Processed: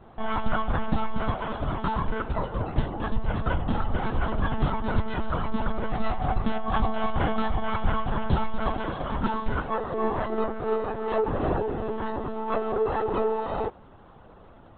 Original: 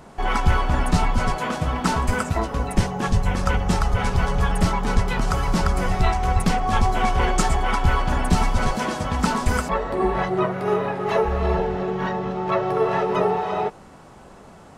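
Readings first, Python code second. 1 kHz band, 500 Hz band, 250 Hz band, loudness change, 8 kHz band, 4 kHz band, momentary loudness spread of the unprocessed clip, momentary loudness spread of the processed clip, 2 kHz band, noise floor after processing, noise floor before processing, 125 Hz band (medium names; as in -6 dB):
-6.0 dB, -4.5 dB, -5.0 dB, -6.0 dB, under -40 dB, -9.5 dB, 4 LU, 4 LU, -8.0 dB, -50 dBFS, -45 dBFS, -7.5 dB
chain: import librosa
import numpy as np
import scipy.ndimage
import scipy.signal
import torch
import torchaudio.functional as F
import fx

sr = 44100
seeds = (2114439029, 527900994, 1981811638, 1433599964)

y = fx.lpc_monotone(x, sr, seeds[0], pitch_hz=220.0, order=16)
y = fx.peak_eq(y, sr, hz=2300.0, db=-7.5, octaves=0.64)
y = y * 10.0 ** (-4.5 / 20.0)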